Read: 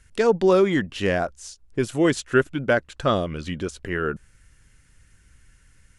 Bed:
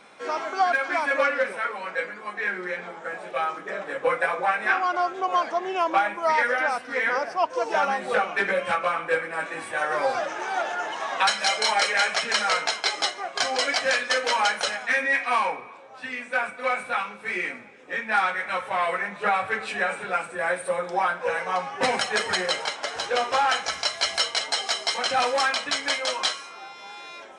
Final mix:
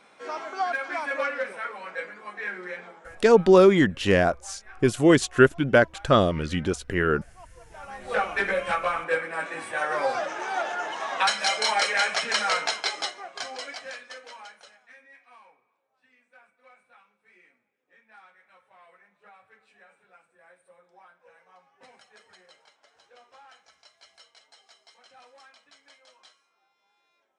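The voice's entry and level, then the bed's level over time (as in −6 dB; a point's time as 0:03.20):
3.05 s, +2.5 dB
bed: 0:02.77 −5.5 dB
0:03.71 −26 dB
0:07.70 −26 dB
0:08.19 −1.5 dB
0:12.73 −1.5 dB
0:15.08 −30.5 dB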